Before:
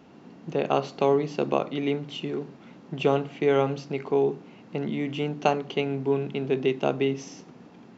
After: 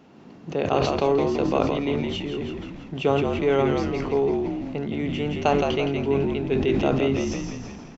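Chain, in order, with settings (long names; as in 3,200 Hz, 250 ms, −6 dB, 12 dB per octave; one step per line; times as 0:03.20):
echo with shifted repeats 167 ms, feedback 51%, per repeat −51 Hz, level −5.5 dB
level that may fall only so fast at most 26 dB per second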